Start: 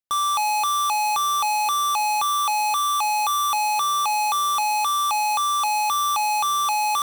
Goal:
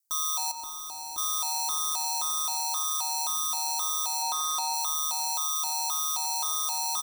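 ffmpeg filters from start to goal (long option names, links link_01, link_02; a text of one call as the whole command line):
ffmpeg -i in.wav -filter_complex "[0:a]aexciter=amount=9.9:drive=2.2:freq=4500,asettb=1/sr,asplit=3[link_01][link_02][link_03];[link_01]atrim=end=4.224[link_04];[link_02]atrim=start=4.22:end=4.74,asetpts=PTS-STARTPTS,afade=type=in:duration=0.004:curve=qsin,afade=type=out:start_time=0.516:duration=0.004:curve=qsin,asplit=2[link_05][link_06];[link_06]highpass=frequency=720:poles=1,volume=20dB,asoftclip=type=tanh:threshold=-3dB[link_07];[link_05][link_07]amix=inputs=2:normalize=0,lowpass=frequency=2500:poles=1,volume=-6dB[link_08];[link_03]atrim=start=4.736[link_09];[link_04][link_08]acrossfade=duration=0.004:curve1=hsin:curve2=qsin[link_10];[link_10][link_09]acrossfade=duration=0.004:curve1=qsin:curve2=hsin,asoftclip=type=hard:threshold=-13.5dB,aeval=exprs='val(0)*sin(2*PI*76*n/s)':channel_layout=same,asettb=1/sr,asplit=3[link_11][link_12][link_13];[link_11]atrim=end=0.514[link_14];[link_12]atrim=start=0.51:end=1.18,asetpts=PTS-STARTPTS,afade=type=in:duration=0.004:curve=qsin,afade=type=out:start_time=0.666:duration=0.004:curve=qsin,acrossover=split=370[link_15][link_16];[link_16]acompressor=threshold=-37dB:ratio=5[link_17];[link_15][link_17]amix=inputs=2:normalize=0[link_18];[link_13]atrim=start=1.176[link_19];[link_14][link_18]acrossfade=duration=0.004:curve1=hsin:curve2=qsin[link_20];[link_20][link_19]acrossfade=duration=0.004:curve1=qsin:curve2=hsin,asettb=1/sr,asplit=3[link_21][link_22][link_23];[link_21]atrim=end=2.584[link_24];[link_22]atrim=start=2.58:end=3.15,asetpts=PTS-STARTPTS,afade=type=in:duration=0.004:curve=qsin,afade=type=out:start_time=0.566:duration=0.004:curve=qsin,lowshelf=frequency=200:width_type=q:width=1.5:gain=-9.5[link_25];[link_23]atrim=start=3.146[link_26];[link_24][link_25]acrossfade=duration=0.004:curve1=hsin:curve2=qsin[link_27];[link_27][link_26]acrossfade=duration=0.004:curve1=qsin:curve2=hsin,asplit=2[link_28][link_29];[link_29]adelay=90,lowpass=frequency=1300:poles=1,volume=-12dB,asplit=2[link_30][link_31];[link_31]adelay=90,lowpass=frequency=1300:poles=1,volume=0.48,asplit=2[link_32][link_33];[link_33]adelay=90,lowpass=frequency=1300:poles=1,volume=0.48,asplit=2[link_34][link_35];[link_35]adelay=90,lowpass=frequency=1300:poles=1,volume=0.48,asplit=2[link_36][link_37];[link_37]adelay=90,lowpass=frequency=1300:poles=1,volume=0.48[link_38];[link_28][link_30][link_32][link_34][link_36][link_38]amix=inputs=6:normalize=0,alimiter=limit=-22dB:level=0:latency=1:release=151,aecho=1:1:3.1:0.68,volume=-2.5dB" out.wav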